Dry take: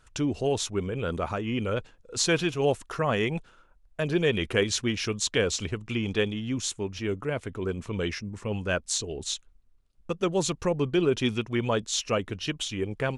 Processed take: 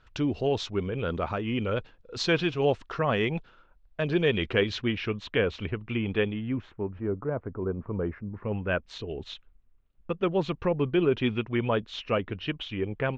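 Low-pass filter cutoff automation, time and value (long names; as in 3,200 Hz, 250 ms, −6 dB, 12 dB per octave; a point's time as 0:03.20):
low-pass filter 24 dB per octave
0:04.46 4,500 Hz
0:05.11 2,900 Hz
0:06.27 2,900 Hz
0:07.05 1,300 Hz
0:08.10 1,300 Hz
0:08.86 3,100 Hz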